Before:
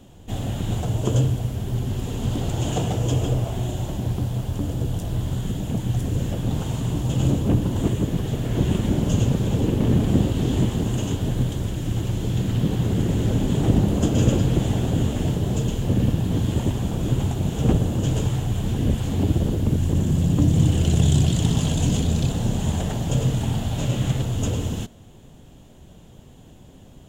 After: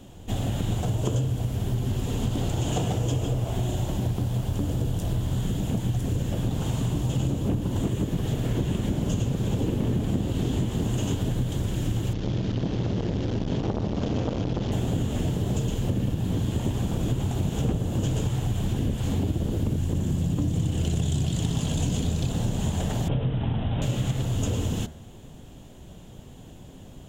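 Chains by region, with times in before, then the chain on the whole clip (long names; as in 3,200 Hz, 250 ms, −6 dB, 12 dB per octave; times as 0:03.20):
0:12.13–0:14.72: variable-slope delta modulation 32 kbit/s + saturating transformer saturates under 540 Hz
0:23.08–0:23.82: low-pass filter 2,800 Hz 6 dB per octave + bad sample-rate conversion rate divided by 6×, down none, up filtered
whole clip: hum removal 75.56 Hz, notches 28; downward compressor, threshold −24 dBFS; level +2 dB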